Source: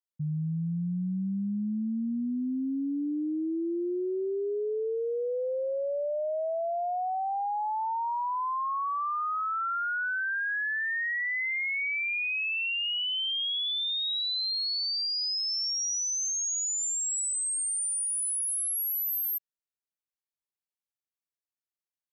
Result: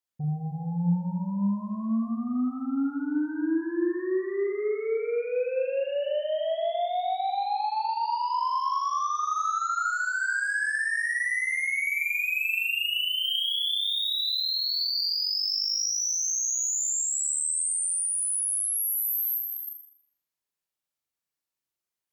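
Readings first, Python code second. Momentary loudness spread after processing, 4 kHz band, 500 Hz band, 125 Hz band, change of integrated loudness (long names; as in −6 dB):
5 LU, +2.5 dB, +2.5 dB, can't be measured, +2.5 dB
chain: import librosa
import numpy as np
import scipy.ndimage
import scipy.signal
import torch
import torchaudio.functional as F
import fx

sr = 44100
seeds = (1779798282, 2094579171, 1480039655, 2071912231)

y = fx.cheby_harmonics(x, sr, harmonics=(3, 4, 5), levels_db=(-21, -43, -18), full_scale_db=-27.0)
y = fx.room_flutter(y, sr, wall_m=6.9, rt60_s=0.61)
y = fx.rev_gated(y, sr, seeds[0], gate_ms=360, shape='rising', drr_db=6.5)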